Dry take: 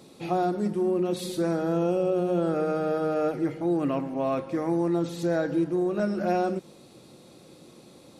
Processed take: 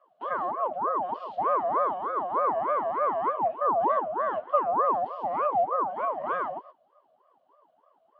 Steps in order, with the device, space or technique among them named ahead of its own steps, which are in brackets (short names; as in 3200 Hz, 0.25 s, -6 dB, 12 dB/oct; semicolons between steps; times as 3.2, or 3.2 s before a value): notch 5200 Hz, Q 6.7; gate -43 dBFS, range -13 dB; EQ curve 200 Hz 0 dB, 310 Hz +10 dB, 500 Hz -17 dB, 750 Hz -1 dB, 4600 Hz -18 dB; voice changer toy (ring modulator with a swept carrier 630 Hz, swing 45%, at 3.3 Hz; speaker cabinet 420–4600 Hz, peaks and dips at 620 Hz +7 dB, 1100 Hz +7 dB, 3000 Hz +9 dB); gain -3 dB